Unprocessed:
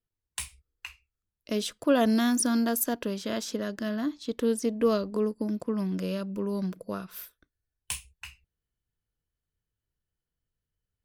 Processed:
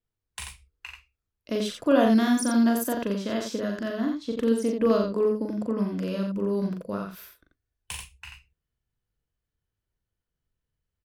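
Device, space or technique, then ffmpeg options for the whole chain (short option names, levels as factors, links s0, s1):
slapback doubling: -filter_complex "[0:a]asplit=3[s0][s1][s2];[s1]adelay=40,volume=0.631[s3];[s2]adelay=87,volume=0.562[s4];[s0][s3][s4]amix=inputs=3:normalize=0,highshelf=f=4500:g=-8.5,volume=1.12"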